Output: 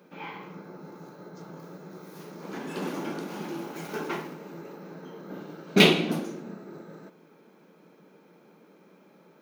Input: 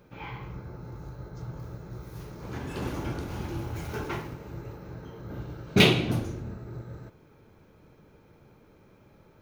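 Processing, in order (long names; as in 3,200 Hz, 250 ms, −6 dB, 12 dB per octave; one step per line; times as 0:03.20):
elliptic high-pass filter 170 Hz, stop band 40 dB
level +2.5 dB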